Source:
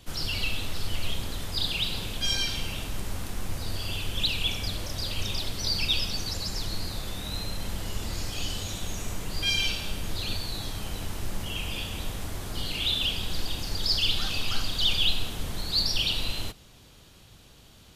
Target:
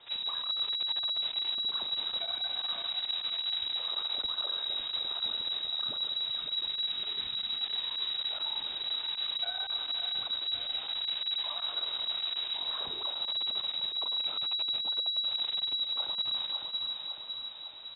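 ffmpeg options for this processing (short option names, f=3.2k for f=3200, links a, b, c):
-filter_complex "[0:a]asplit=2[a][b];[b]adelay=158,lowpass=f=2k:p=1,volume=-13dB,asplit=2[c][d];[d]adelay=158,lowpass=f=2k:p=1,volume=0.37,asplit=2[e][f];[f]adelay=158,lowpass=f=2k:p=1,volume=0.37,asplit=2[g][h];[h]adelay=158,lowpass=f=2k:p=1,volume=0.37[i];[c][e][g][i]amix=inputs=4:normalize=0[j];[a][j]amix=inputs=2:normalize=0,acrossover=split=240[k][l];[l]acompressor=threshold=-38dB:ratio=6[m];[k][m]amix=inputs=2:normalize=0,asplit=2[n][o];[o]aecho=0:1:555|1110|1665|2220|2775|3330|3885:0.422|0.232|0.128|0.0702|0.0386|0.0212|0.0117[p];[n][p]amix=inputs=2:normalize=0,volume=29.5dB,asoftclip=hard,volume=-29.5dB,lowpass=f=3.3k:t=q:w=0.5098,lowpass=f=3.3k:t=q:w=0.6013,lowpass=f=3.3k:t=q:w=0.9,lowpass=f=3.3k:t=q:w=2.563,afreqshift=-3900,volume=-1.5dB"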